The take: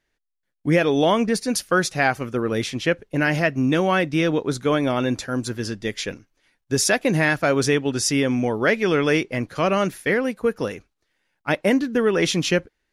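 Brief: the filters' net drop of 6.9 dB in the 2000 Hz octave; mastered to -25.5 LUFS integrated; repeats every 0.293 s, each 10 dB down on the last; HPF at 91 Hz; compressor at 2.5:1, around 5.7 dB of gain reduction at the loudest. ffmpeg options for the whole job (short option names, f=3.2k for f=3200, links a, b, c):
-af "highpass=91,equalizer=f=2k:t=o:g=-9,acompressor=threshold=-24dB:ratio=2.5,aecho=1:1:293|586|879|1172:0.316|0.101|0.0324|0.0104,volume=1.5dB"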